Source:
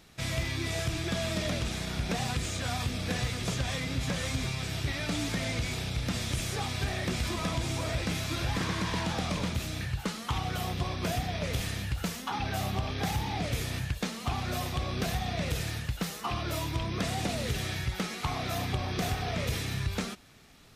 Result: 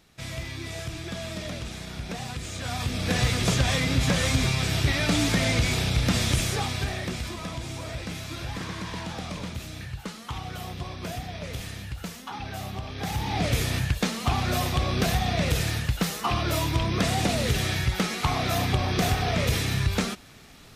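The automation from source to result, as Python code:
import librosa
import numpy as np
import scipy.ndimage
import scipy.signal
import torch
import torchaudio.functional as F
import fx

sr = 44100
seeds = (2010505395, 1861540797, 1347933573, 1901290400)

y = fx.gain(x, sr, db=fx.line((2.39, -3.0), (3.28, 8.5), (6.29, 8.5), (7.38, -3.0), (12.9, -3.0), (13.44, 7.0)))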